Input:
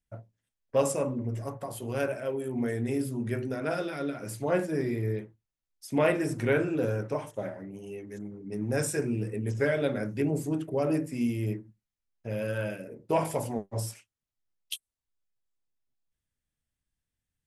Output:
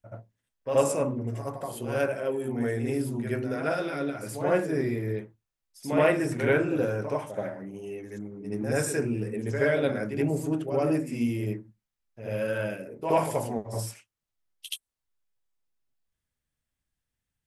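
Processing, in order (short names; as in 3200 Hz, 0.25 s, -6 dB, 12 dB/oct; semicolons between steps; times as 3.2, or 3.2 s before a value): bell 1100 Hz +3 dB 2.7 oct; reverse echo 77 ms -8 dB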